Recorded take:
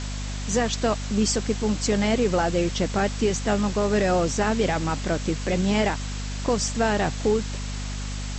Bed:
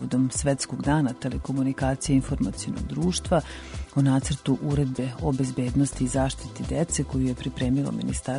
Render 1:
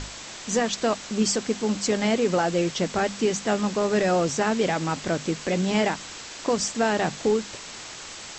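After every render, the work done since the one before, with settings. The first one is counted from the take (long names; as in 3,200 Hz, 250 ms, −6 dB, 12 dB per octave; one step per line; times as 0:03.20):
mains-hum notches 50/100/150/200/250 Hz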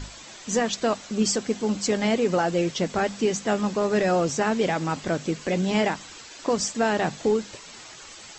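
broadband denoise 9 dB, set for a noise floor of −40 dBFS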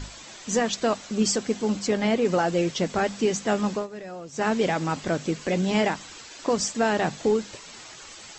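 0:01.79–0:02.25: high-shelf EQ 6,200 Hz −9 dB
0:03.74–0:04.45: duck −16 dB, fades 0.13 s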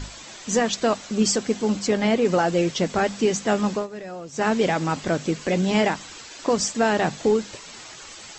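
level +2.5 dB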